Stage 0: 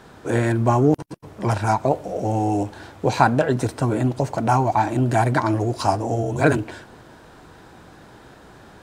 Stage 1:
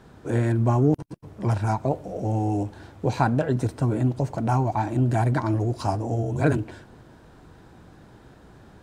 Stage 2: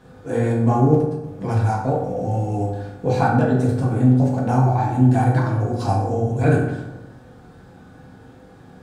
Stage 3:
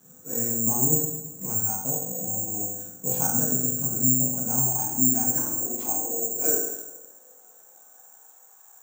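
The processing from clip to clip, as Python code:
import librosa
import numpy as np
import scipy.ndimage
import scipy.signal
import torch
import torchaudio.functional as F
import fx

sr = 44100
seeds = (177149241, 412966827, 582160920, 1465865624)

y1 = fx.low_shelf(x, sr, hz=320.0, db=9.5)
y1 = y1 * 10.0 ** (-8.5 / 20.0)
y2 = fx.rev_fdn(y1, sr, rt60_s=0.98, lf_ratio=1.2, hf_ratio=0.55, size_ms=12.0, drr_db=-5.0)
y2 = y2 * 10.0 ** (-2.5 / 20.0)
y3 = (np.kron(y2[::6], np.eye(6)[0]) * 6)[:len(y2)]
y3 = fx.filter_sweep_highpass(y3, sr, from_hz=170.0, to_hz=880.0, start_s=4.6, end_s=8.55, q=2.2)
y3 = y3 * 10.0 ** (-15.0 / 20.0)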